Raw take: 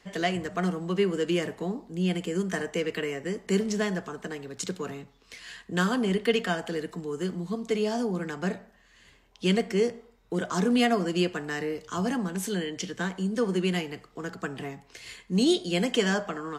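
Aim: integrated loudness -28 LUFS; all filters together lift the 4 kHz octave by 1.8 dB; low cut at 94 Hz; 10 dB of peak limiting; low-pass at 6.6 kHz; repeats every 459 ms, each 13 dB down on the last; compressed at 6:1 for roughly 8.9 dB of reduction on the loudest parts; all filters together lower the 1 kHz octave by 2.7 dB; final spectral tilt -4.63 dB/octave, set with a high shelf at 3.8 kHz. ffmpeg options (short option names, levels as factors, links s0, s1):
-af "highpass=94,lowpass=6600,equalizer=f=1000:t=o:g=-4,highshelf=f=3800:g=-6,equalizer=f=4000:t=o:g=7,acompressor=threshold=0.0355:ratio=6,alimiter=level_in=1.5:limit=0.0631:level=0:latency=1,volume=0.668,aecho=1:1:459|918|1377:0.224|0.0493|0.0108,volume=2.82"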